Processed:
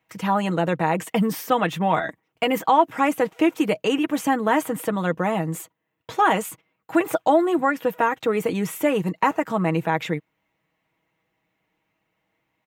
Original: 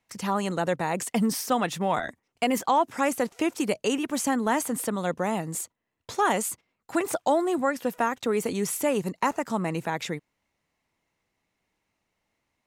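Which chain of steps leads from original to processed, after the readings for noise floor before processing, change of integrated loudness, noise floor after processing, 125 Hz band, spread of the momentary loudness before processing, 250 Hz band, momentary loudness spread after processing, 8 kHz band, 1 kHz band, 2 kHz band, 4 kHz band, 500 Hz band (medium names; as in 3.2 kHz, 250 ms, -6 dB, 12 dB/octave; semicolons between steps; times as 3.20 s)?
-80 dBFS, +4.5 dB, -76 dBFS, +6.5 dB, 7 LU, +4.5 dB, 7 LU, -5.5 dB, +5.5 dB, +5.0 dB, +3.0 dB, +4.5 dB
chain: high-pass 63 Hz; high-order bell 6.9 kHz -10.5 dB; comb 6.3 ms, depth 54%; trim +4 dB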